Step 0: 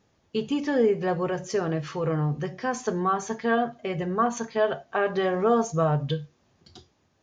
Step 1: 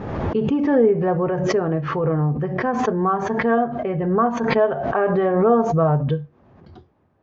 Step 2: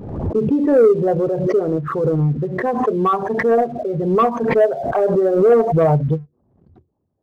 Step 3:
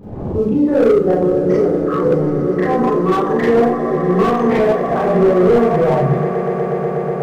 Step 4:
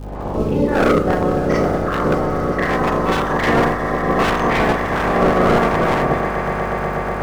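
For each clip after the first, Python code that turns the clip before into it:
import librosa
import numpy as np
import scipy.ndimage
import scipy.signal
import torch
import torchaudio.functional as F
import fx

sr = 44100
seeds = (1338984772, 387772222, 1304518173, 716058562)

y1 = scipy.signal.sosfilt(scipy.signal.butter(2, 1300.0, 'lowpass', fs=sr, output='sos'), x)
y1 = fx.pre_swell(y1, sr, db_per_s=37.0)
y1 = y1 * 10.0 ** (5.5 / 20.0)
y2 = fx.envelope_sharpen(y1, sr, power=2.0)
y2 = fx.leveller(y2, sr, passes=1)
y2 = fx.upward_expand(y2, sr, threshold_db=-30.0, expansion=1.5)
y2 = y2 * 10.0 ** (2.0 / 20.0)
y3 = fx.echo_swell(y2, sr, ms=122, loudest=8, wet_db=-16)
y3 = fx.rev_schroeder(y3, sr, rt60_s=0.51, comb_ms=30, drr_db=-7.5)
y3 = fx.slew_limit(y3, sr, full_power_hz=360.0)
y3 = y3 * 10.0 ** (-6.0 / 20.0)
y4 = fx.spec_clip(y3, sr, under_db=20)
y4 = fx.dmg_crackle(y4, sr, seeds[0], per_s=78.0, level_db=-30.0)
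y4 = fx.add_hum(y4, sr, base_hz=50, snr_db=13)
y4 = y4 * 10.0 ** (-2.5 / 20.0)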